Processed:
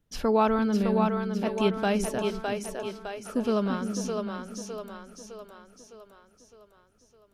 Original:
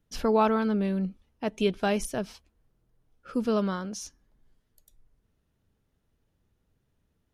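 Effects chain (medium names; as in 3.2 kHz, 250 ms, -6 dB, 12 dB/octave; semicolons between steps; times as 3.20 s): two-band feedback delay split 320 Hz, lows 342 ms, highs 609 ms, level -4 dB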